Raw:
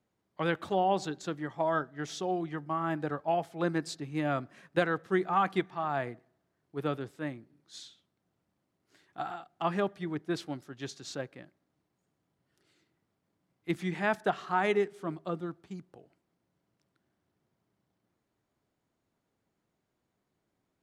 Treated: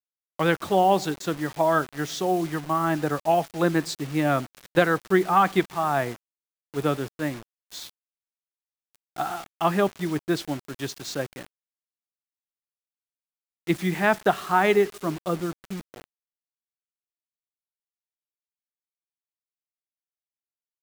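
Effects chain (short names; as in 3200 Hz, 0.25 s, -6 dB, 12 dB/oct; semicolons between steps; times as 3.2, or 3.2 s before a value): bit-crush 8-bit; gain +8 dB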